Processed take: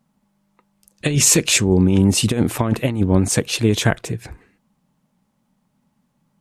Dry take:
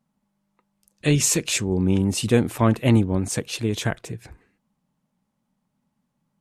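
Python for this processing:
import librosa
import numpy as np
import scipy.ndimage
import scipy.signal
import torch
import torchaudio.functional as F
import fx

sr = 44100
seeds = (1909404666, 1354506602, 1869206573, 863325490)

y = fx.over_compress(x, sr, threshold_db=-20.0, ratio=-0.5)
y = F.gain(torch.from_numpy(y), 6.0).numpy()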